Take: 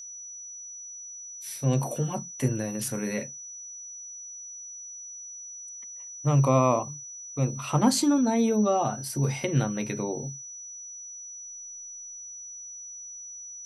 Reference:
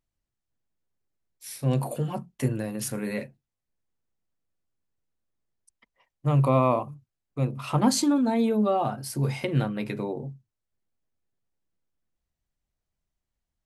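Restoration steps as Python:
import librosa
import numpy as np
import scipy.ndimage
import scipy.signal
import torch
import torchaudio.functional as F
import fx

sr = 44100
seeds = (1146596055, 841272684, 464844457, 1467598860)

y = fx.notch(x, sr, hz=5900.0, q=30.0)
y = fx.fix_level(y, sr, at_s=11.46, step_db=-7.5)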